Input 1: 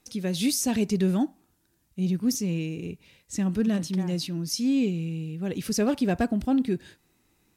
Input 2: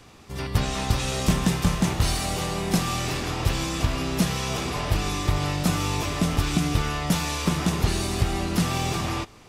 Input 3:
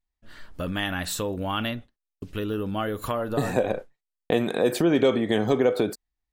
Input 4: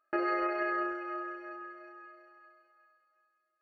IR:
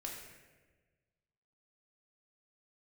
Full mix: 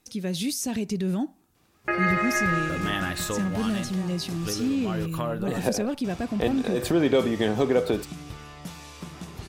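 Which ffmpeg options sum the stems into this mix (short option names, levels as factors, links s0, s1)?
-filter_complex "[0:a]alimiter=limit=0.1:level=0:latency=1:release=82,volume=1,asplit=2[s0][s1];[1:a]highpass=54,adelay=1550,volume=0.168,asplit=3[s2][s3][s4];[s2]atrim=end=5.06,asetpts=PTS-STARTPTS,afade=t=out:st=5.056:d=0.004:c=hsin[s5];[s3]atrim=start=5.06:end=6.04,asetpts=PTS-STARTPTS,volume=0[s6];[s4]atrim=start=6.04,asetpts=PTS-STARTPTS,afade=t=in:d=0.004:c=hsin[s7];[s5][s6][s7]concat=n=3:v=0:a=1[s8];[2:a]adelay=2100,volume=0.891[s9];[3:a]equalizer=f=2200:w=1.7:g=14.5,adelay=1750,volume=1.26[s10];[s1]apad=whole_len=371421[s11];[s9][s11]sidechaincompress=threshold=0.0282:ratio=8:attack=7.7:release=101[s12];[s0][s8][s12][s10]amix=inputs=4:normalize=0"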